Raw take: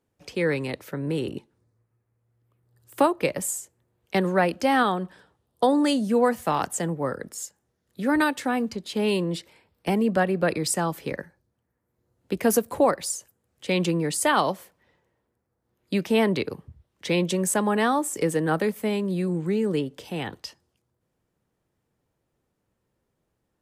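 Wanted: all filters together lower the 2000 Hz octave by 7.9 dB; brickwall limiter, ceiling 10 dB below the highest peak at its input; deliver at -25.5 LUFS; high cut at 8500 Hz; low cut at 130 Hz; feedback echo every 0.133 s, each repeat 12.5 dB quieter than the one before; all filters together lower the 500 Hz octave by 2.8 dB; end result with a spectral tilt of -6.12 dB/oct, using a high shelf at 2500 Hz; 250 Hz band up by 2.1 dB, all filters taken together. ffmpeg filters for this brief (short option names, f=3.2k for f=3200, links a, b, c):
-af "highpass=130,lowpass=8.5k,equalizer=f=250:t=o:g=4.5,equalizer=f=500:t=o:g=-4,equalizer=f=2k:t=o:g=-8,highshelf=f=2.5k:g=-5.5,alimiter=limit=-19.5dB:level=0:latency=1,aecho=1:1:133|266|399:0.237|0.0569|0.0137,volume=3.5dB"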